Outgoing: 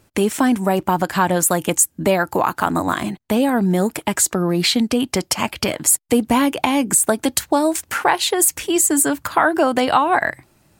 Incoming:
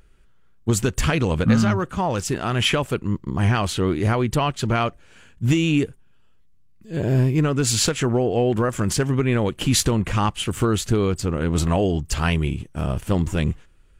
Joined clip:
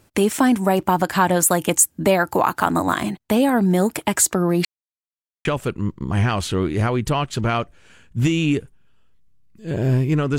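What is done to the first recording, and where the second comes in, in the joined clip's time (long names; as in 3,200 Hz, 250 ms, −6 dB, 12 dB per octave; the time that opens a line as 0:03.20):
outgoing
0:04.65–0:05.45: silence
0:05.45: continue with incoming from 0:02.71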